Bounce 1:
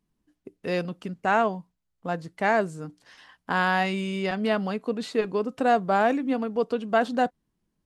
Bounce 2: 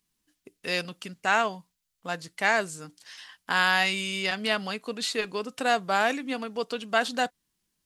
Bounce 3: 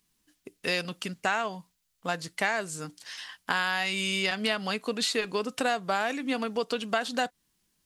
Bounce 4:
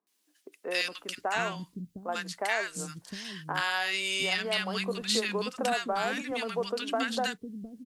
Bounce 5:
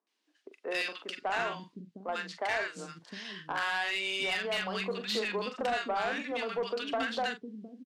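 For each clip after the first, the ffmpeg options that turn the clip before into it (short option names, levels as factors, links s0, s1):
-af "tiltshelf=f=1500:g=-10,volume=1.26"
-af "acompressor=threshold=0.0355:ratio=5,volume=1.68"
-filter_complex "[0:a]acrossover=split=290|1200[s0][s1][s2];[s2]adelay=70[s3];[s0]adelay=710[s4];[s4][s1][s3]amix=inputs=3:normalize=0"
-filter_complex "[0:a]highpass=250,lowpass=3900,asplit=2[s0][s1];[s1]adelay=42,volume=0.316[s2];[s0][s2]amix=inputs=2:normalize=0,asoftclip=type=tanh:threshold=0.0631"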